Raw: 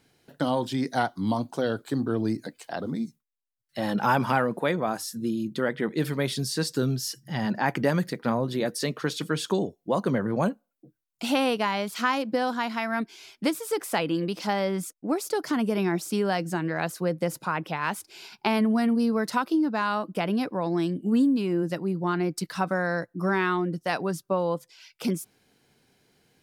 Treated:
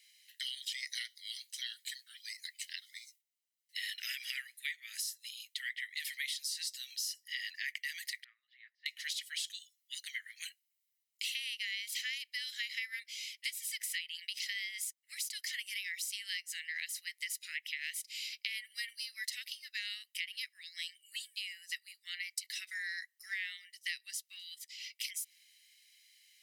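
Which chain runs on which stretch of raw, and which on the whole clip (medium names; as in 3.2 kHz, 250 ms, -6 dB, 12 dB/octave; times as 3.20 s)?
8.24–8.86 s: de-esser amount 90% + two resonant band-passes 740 Hz, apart 1.4 oct + distance through air 250 m
whole clip: steep high-pass 1.9 kHz 72 dB/octave; comb 1 ms, depth 43%; compression 6:1, threshold -40 dBFS; trim +4 dB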